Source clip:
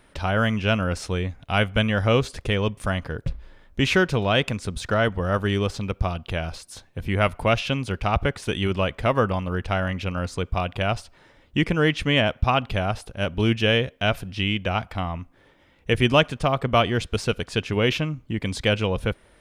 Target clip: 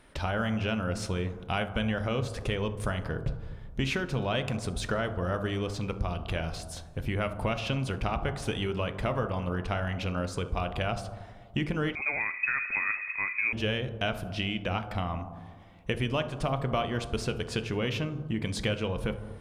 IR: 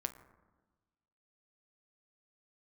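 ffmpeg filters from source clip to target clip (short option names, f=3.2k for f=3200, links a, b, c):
-filter_complex "[0:a]acompressor=threshold=-25dB:ratio=6[a];[1:a]atrim=start_sample=2205,asetrate=29988,aresample=44100[b];[a][b]afir=irnorm=-1:irlink=0,asettb=1/sr,asplit=3[c][d][e];[c]atrim=end=11.954[f];[d]atrim=start=11.95:end=13.53,asetpts=PTS-STARTPTS,afade=t=in:d=0.004:c=qsin,afade=t=out:st=1.576:d=0.004:c=qsin,lowpass=f=2.2k:t=q:w=0.5098,lowpass=f=2.2k:t=q:w=0.6013,lowpass=f=2.2k:t=q:w=0.9,lowpass=f=2.2k:t=q:w=2.563,afreqshift=-2600[g];[e]atrim=start=13.526[h];[f][g]acrossfade=d=0.004:c1=hsin:c2=qsin[i];[i][h]acrossfade=d=0.004:c1=qsin:c2=hsin,volume=-2.5dB"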